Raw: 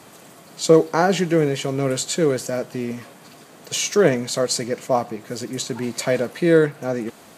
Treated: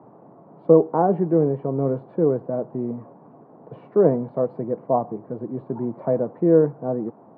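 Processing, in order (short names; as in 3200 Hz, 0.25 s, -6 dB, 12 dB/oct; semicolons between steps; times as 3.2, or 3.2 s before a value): elliptic band-pass 110–950 Hz, stop band 70 dB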